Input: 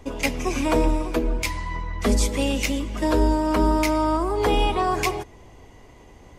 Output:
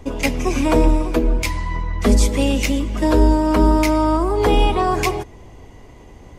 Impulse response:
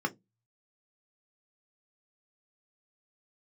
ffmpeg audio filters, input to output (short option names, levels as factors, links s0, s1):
-af "lowshelf=f=440:g=4.5,volume=1.33"